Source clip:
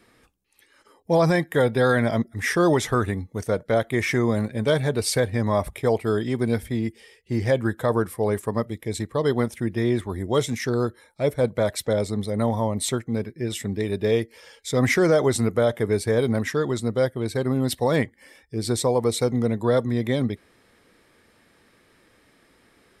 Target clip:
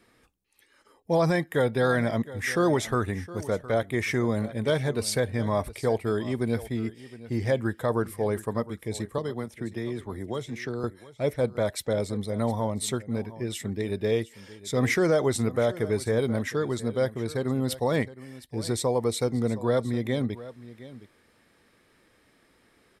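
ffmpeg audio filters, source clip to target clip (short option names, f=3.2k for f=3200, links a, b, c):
-filter_complex "[0:a]asettb=1/sr,asplit=3[a][b][c];[a]atrim=end=9.184[d];[b]atrim=start=9.18:end=10.84,asetpts=PTS-STARTPTS,afade=t=in:d=0.004:c=qsin,afade=t=out:st=1.656:d=0.004:c=qsin,acrossover=split=190|4600[e][f][g];[e]acompressor=threshold=-35dB:ratio=4[h];[f]acompressor=threshold=-27dB:ratio=4[i];[g]acompressor=threshold=-52dB:ratio=4[j];[h][i][j]amix=inputs=3:normalize=0[k];[c]atrim=start=10.836[l];[d][k]acrossfade=d=0.004:c1=hsin:c2=qsin[m];[m][l]acrossfade=d=0.004:c1=qsin:c2=hsin,aecho=1:1:714:0.141,volume=-4dB"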